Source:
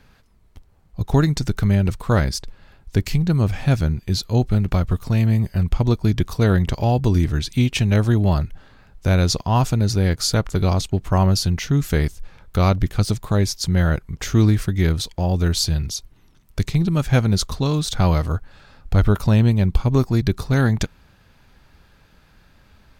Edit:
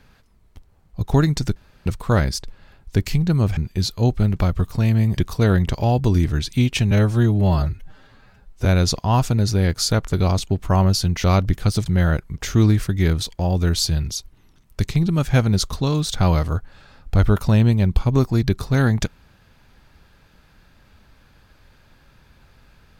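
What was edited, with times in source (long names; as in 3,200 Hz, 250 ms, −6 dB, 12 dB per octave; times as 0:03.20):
0:01.56–0:01.86: fill with room tone
0:03.57–0:03.89: remove
0:05.49–0:06.17: remove
0:07.91–0:09.07: time-stretch 1.5×
0:11.66–0:12.57: remove
0:13.19–0:13.65: remove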